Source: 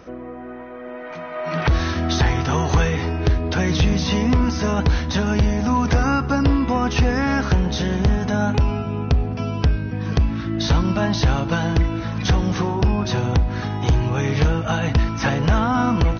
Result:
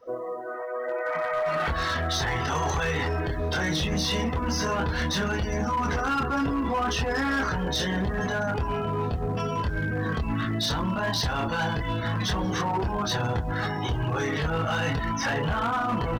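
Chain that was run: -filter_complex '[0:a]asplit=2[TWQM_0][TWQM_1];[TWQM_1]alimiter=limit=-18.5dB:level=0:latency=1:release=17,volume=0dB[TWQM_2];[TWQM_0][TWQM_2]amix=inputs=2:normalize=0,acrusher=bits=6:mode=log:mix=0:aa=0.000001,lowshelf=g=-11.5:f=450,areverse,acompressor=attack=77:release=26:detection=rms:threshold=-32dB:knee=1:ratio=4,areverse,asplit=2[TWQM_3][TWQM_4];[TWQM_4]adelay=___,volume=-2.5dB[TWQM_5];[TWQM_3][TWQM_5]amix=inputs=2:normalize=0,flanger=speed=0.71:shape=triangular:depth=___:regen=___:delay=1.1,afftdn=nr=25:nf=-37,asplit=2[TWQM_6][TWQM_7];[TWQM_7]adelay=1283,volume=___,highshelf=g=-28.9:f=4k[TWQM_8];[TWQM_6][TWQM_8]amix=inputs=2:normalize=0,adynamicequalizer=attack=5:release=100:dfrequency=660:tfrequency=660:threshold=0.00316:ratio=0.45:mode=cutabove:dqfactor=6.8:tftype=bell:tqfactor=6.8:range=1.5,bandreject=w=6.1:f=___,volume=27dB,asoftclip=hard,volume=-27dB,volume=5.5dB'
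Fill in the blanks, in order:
26, 7.6, -63, -18dB, 2.4k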